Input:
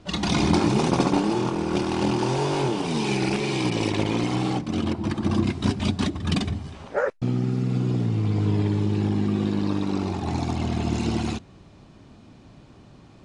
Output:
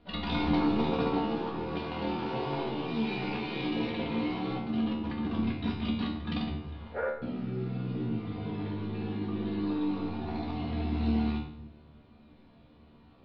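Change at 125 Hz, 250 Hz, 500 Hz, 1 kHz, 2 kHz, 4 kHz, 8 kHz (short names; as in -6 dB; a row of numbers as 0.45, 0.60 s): -11.5 dB, -6.5 dB, -8.0 dB, -7.0 dB, -7.5 dB, -9.0 dB, under -30 dB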